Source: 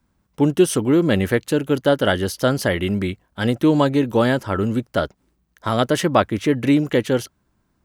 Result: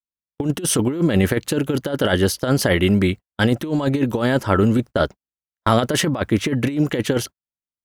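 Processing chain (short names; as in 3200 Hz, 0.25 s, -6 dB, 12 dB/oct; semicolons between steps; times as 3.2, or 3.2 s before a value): gate -31 dBFS, range -47 dB; negative-ratio compressor -19 dBFS, ratio -0.5; gain +2.5 dB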